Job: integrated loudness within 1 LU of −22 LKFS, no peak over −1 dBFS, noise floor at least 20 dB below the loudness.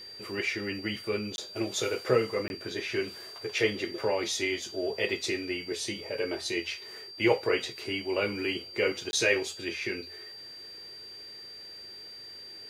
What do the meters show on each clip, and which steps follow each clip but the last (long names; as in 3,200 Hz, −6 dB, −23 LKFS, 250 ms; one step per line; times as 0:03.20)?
number of dropouts 3; longest dropout 21 ms; interfering tone 4,700 Hz; level of the tone −43 dBFS; integrated loudness −30.5 LKFS; sample peak −10.5 dBFS; target loudness −22.0 LKFS
→ repair the gap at 0:01.36/0:02.48/0:09.11, 21 ms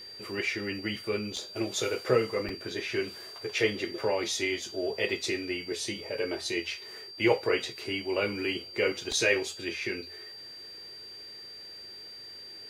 number of dropouts 0; interfering tone 4,700 Hz; level of the tone −43 dBFS
→ notch filter 4,700 Hz, Q 30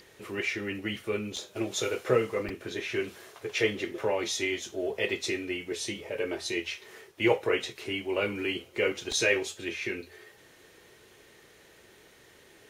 interfering tone none found; integrated loudness −31.0 LKFS; sample peak −11.0 dBFS; target loudness −22.0 LKFS
→ level +9 dB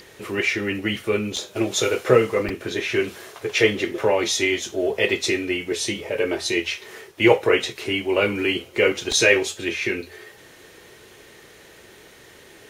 integrated loudness −22.0 LKFS; sample peak −2.0 dBFS; background noise floor −48 dBFS